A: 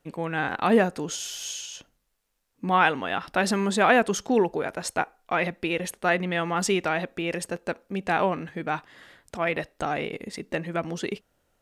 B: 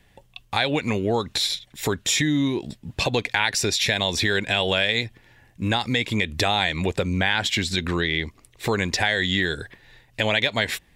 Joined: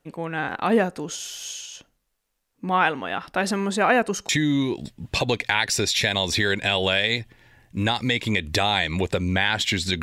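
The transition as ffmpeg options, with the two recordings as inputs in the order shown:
ffmpeg -i cue0.wav -i cue1.wav -filter_complex "[0:a]asettb=1/sr,asplit=3[link_01][link_02][link_03];[link_01]atrim=end=3.784[link_04];[link_02]atrim=start=3.78:end=4.29,asetpts=PTS-STARTPTS,afade=type=in:duration=0.004:curve=qsin,afade=type=out:start_time=0.506:duration=0.004:curve=qsin,asuperstop=centerf=3400:order=8:qfactor=7.5[link_05];[link_03]atrim=start=4.286[link_06];[link_04][link_05]acrossfade=duration=0.004:curve1=hsin:curve2=qsin[link_07];[link_07][link_06]acrossfade=duration=0.004:curve1=qsin:curve2=hsin,apad=whole_dur=10.02,atrim=end=10.02,atrim=end=4.292[link_08];[1:a]atrim=start=2.138:end=7.87[link_09];[link_08][link_09]acrossfade=duration=0.004:curve1=hsin:curve2=hsin" out.wav

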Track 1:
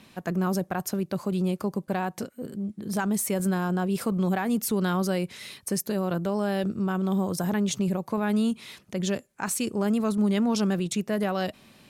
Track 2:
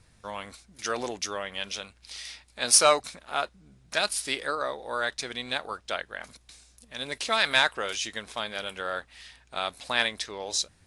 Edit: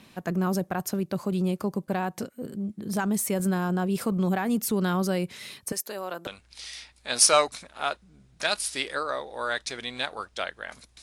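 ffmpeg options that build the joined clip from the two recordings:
ffmpeg -i cue0.wav -i cue1.wav -filter_complex "[0:a]asettb=1/sr,asplit=3[link_01][link_02][link_03];[link_01]atrim=end=5.724[link_04];[link_02]atrim=start=5.72:end=6.27,asetpts=PTS-STARTPTS,afade=type=in:duration=0.004:curve=qsin,afade=type=out:start_time=0.546:duration=0.004:curve=qsin,highpass=590[link_05];[link_03]atrim=start=6.266[link_06];[link_04][link_05]acrossfade=duration=0.004:curve1=hsin:curve2=qsin[link_07];[link_07][link_06]acrossfade=duration=0.004:curve1=qsin:curve2=hsin,apad=whole_dur=11.02,atrim=end=11.02,atrim=end=6.272[link_08];[1:a]atrim=start=1.788:end=6.54[link_09];[link_08][link_09]acrossfade=duration=0.004:curve1=hsin:curve2=hsin" out.wav

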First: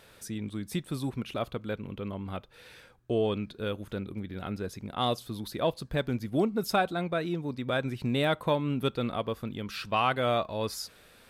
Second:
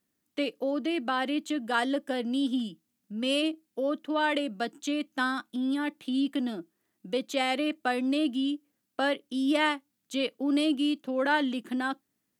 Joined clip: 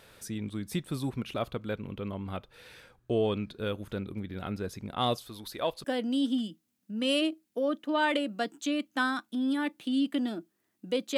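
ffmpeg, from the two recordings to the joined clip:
ffmpeg -i cue0.wav -i cue1.wav -filter_complex "[0:a]asettb=1/sr,asplit=3[link_01][link_02][link_03];[link_01]atrim=end=5.174[link_04];[link_02]atrim=start=5.17:end=5.84,asetpts=PTS-STARTPTS,afade=type=in:duration=0.004:curve=qsin,afade=type=out:start_time=0.666:duration=0.004:curve=qsin,equalizer=frequency=150:width_type=o:width=2.5:gain=-11[link_05];[link_03]atrim=start=5.836[link_06];[link_04][link_05]acrossfade=duration=0.004:curve1=hsin:curve2=qsin[link_07];[link_07][link_06]acrossfade=duration=0.004:curve1=qsin:curve2=hsin,apad=whole_dur=11.17,atrim=end=11.17,atrim=end=5.842[link_08];[1:a]atrim=start=2.048:end=7.38[link_09];[link_08][link_09]acrossfade=duration=0.004:curve1=hsin:curve2=hsin" out.wav

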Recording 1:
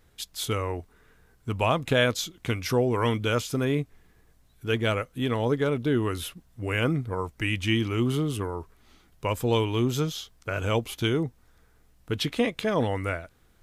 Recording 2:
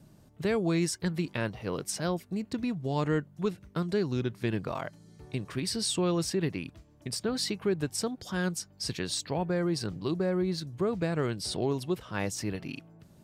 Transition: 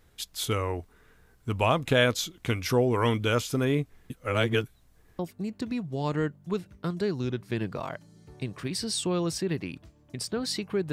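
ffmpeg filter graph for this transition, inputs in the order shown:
ffmpeg -i cue0.wav -i cue1.wav -filter_complex "[0:a]apad=whole_dur=10.92,atrim=end=10.92,asplit=2[link_01][link_02];[link_01]atrim=end=4.102[link_03];[link_02]atrim=start=4.098:end=5.192,asetpts=PTS-STARTPTS,areverse[link_04];[1:a]atrim=start=2.108:end=7.84[link_05];[link_03][link_04]acrossfade=duration=0.004:curve1=hsin:curve2=hsin[link_06];[link_06][link_05]acrossfade=duration=0.004:curve1=hsin:curve2=hsin" out.wav

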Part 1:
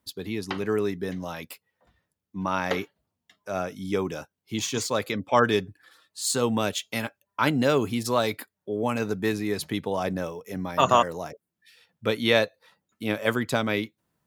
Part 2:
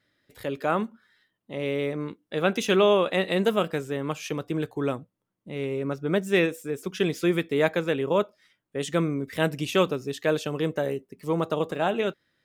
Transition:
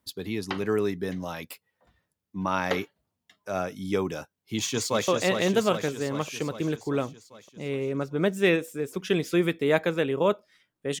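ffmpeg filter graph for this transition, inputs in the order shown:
ffmpeg -i cue0.wav -i cue1.wav -filter_complex "[0:a]apad=whole_dur=11,atrim=end=11,atrim=end=5.082[link_01];[1:a]atrim=start=2.978:end=8.9[link_02];[link_01][link_02]acrossfade=duration=0.004:curve1=hsin:curve2=hsin,asplit=2[link_03][link_04];[link_04]afade=type=in:start_time=4.33:duration=0.01,afade=type=out:start_time=5.08:duration=0.01,aecho=0:1:400|800|1200|1600|2000|2400|2800|3200|3600|4000:0.562341|0.365522|0.237589|0.154433|0.100381|0.0652479|0.0424112|0.0275673|0.0179187|0.0116472[link_05];[link_03][link_05]amix=inputs=2:normalize=0" out.wav

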